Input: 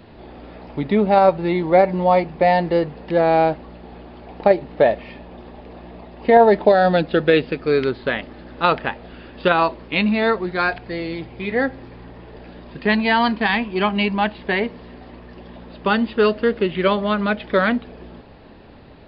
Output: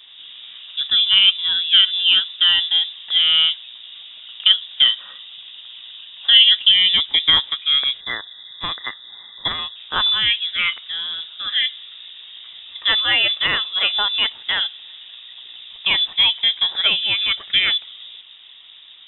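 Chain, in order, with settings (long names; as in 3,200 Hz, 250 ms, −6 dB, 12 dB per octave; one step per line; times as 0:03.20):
adaptive Wiener filter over 9 samples
gain on a spectral selection 0:08.00–0:09.76, 380–1,600 Hz −25 dB
voice inversion scrambler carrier 3,700 Hz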